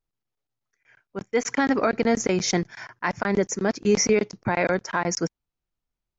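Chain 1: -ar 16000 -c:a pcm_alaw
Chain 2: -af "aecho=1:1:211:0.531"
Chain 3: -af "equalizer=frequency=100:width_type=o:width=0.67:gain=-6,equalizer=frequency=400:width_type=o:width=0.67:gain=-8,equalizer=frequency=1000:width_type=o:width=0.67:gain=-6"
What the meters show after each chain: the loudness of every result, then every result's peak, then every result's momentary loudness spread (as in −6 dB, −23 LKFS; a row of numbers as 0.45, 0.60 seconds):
−24.0, −23.0, −27.0 LKFS; −9.0, −6.5, −12.0 dBFS; 8, 9, 8 LU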